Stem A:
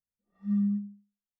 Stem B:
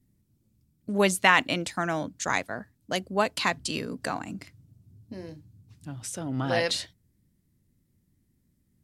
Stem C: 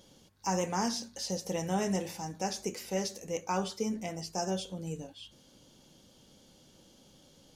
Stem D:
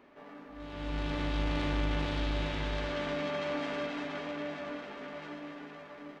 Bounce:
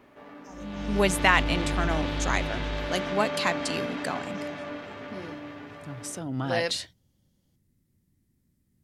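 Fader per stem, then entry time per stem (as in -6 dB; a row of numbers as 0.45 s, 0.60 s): -12.5 dB, -1.0 dB, -19.5 dB, +3.0 dB; 0.15 s, 0.00 s, 0.00 s, 0.00 s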